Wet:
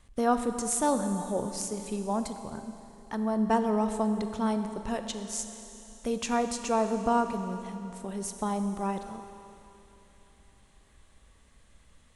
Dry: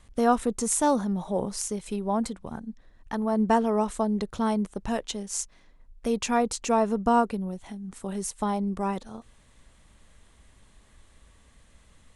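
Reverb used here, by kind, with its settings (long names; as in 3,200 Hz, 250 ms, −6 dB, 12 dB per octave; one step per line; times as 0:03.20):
four-comb reverb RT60 3.2 s, combs from 29 ms, DRR 7.5 dB
level −3.5 dB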